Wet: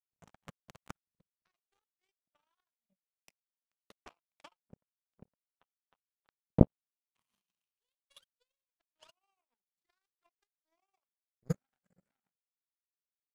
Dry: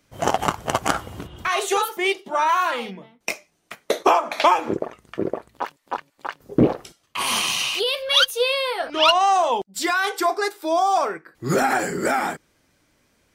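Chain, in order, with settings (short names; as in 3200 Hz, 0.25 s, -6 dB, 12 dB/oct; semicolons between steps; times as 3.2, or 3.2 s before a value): resonant low shelf 250 Hz +10 dB, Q 3; transient shaper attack +8 dB, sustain -3 dB; power-law curve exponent 3; gain -14 dB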